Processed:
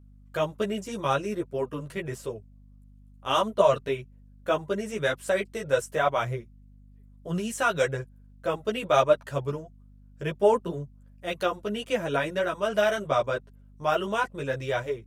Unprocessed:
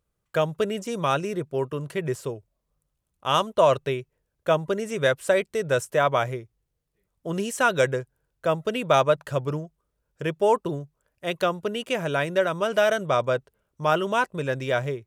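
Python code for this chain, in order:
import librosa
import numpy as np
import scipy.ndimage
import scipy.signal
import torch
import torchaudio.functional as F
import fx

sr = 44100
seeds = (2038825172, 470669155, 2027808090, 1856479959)

y = fx.chorus_voices(x, sr, voices=6, hz=1.2, base_ms=12, depth_ms=3.0, mix_pct=50)
y = fx.add_hum(y, sr, base_hz=50, snr_db=24)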